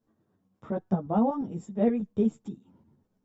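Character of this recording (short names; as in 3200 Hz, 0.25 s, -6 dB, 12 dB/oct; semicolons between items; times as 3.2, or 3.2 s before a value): tremolo saw up 8.5 Hz, depth 45%; a shimmering, thickened sound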